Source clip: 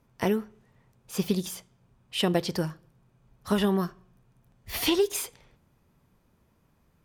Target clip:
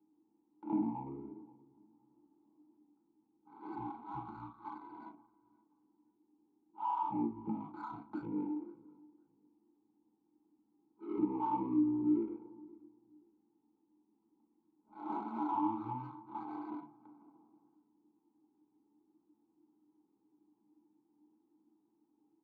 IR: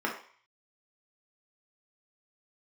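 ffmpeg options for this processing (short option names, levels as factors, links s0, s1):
-filter_complex "[0:a]equalizer=f=14000:w=0.52:g=7,asetrate=13847,aresample=44100[s0];[1:a]atrim=start_sample=2205,atrim=end_sample=3528[s1];[s0][s1]afir=irnorm=-1:irlink=0,acompressor=threshold=0.0891:ratio=12,afftfilt=real='re*(1-between(b*sr/4096,1600,11000))':imag='im*(1-between(b*sr/4096,1600,11000))':win_size=4096:overlap=0.75,adynamicsmooth=sensitivity=6.5:basefreq=1700,asplit=2[s2][s3];[s3]adelay=524,lowpass=f=1700:p=1,volume=0.0708,asplit=2[s4][s5];[s5]adelay=524,lowpass=f=1700:p=1,volume=0.29[s6];[s2][s4][s6]amix=inputs=3:normalize=0,adynamicequalizer=threshold=0.00282:dfrequency=670:dqfactor=5.2:tfrequency=670:tqfactor=5.2:attack=5:release=100:ratio=0.375:range=3:mode=boostabove:tftype=bell,asplit=3[s7][s8][s9];[s7]bandpass=f=300:t=q:w=8,volume=1[s10];[s8]bandpass=f=870:t=q:w=8,volume=0.501[s11];[s9]bandpass=f=2240:t=q:w=8,volume=0.355[s12];[s10][s11][s12]amix=inputs=3:normalize=0"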